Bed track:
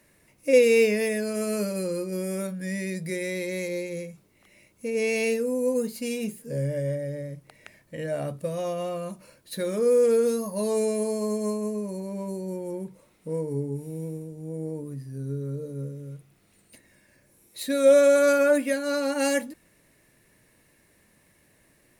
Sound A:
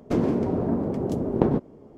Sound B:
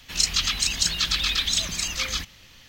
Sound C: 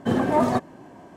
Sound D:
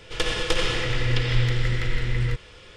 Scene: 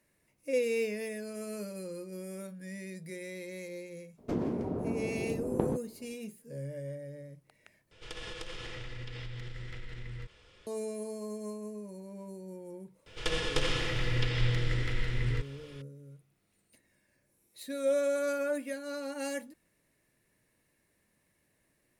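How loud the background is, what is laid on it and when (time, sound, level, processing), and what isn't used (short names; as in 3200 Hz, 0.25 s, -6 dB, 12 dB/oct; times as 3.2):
bed track -12 dB
4.18 add A -9.5 dB
7.91 replace with D -13 dB + compressor, threshold -24 dBFS
13.06 add D -7 dB
not used: B, C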